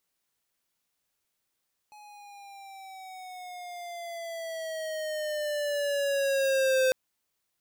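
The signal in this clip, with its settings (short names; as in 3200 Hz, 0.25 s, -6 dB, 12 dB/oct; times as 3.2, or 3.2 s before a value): gliding synth tone square, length 5.00 s, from 844 Hz, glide -8.5 st, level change +27 dB, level -23 dB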